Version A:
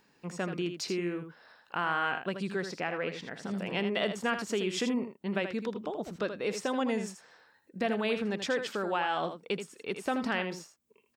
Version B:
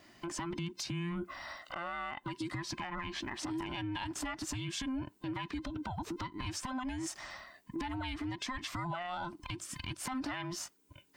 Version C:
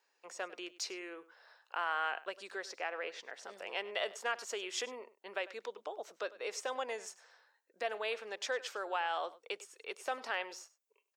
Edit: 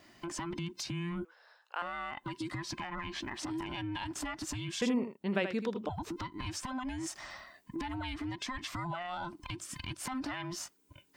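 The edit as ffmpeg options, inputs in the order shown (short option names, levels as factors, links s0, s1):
-filter_complex "[1:a]asplit=3[s0][s1][s2];[s0]atrim=end=1.252[s3];[2:a]atrim=start=1.248:end=1.822[s4];[s1]atrim=start=1.818:end=4.822[s5];[0:a]atrim=start=4.818:end=5.892[s6];[s2]atrim=start=5.888[s7];[s3][s4]acrossfade=d=0.004:c1=hsin:c2=hsin[s8];[s8][s5]acrossfade=d=0.004:c1=hsin:c2=hsin[s9];[s9][s6]acrossfade=d=0.004:c1=hsin:c2=hsin[s10];[s10][s7]acrossfade=d=0.004:c1=hsin:c2=hsin"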